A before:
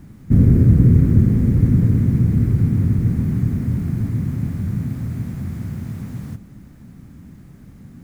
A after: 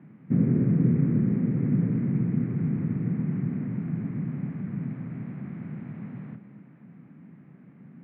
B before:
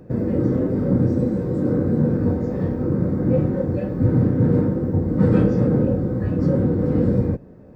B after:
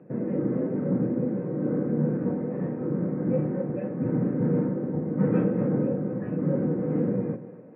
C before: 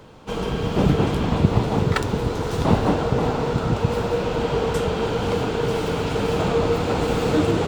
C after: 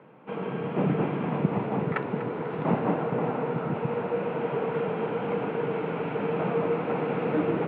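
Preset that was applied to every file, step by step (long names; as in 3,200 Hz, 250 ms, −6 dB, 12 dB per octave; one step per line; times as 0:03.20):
elliptic band-pass filter 150–2,400 Hz, stop band 40 dB
on a send: echo with a time of its own for lows and highs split 420 Hz, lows 116 ms, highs 245 ms, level −14 dB
on the sum: level −5.5 dB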